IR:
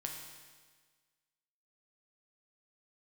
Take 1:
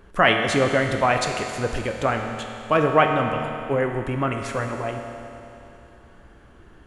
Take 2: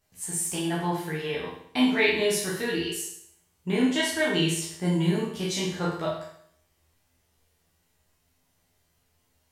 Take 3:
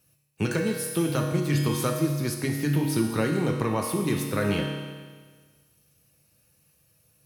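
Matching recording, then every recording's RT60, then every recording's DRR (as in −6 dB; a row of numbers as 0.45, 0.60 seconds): 3; 2.9, 0.65, 1.5 seconds; 3.0, −6.5, 0.5 decibels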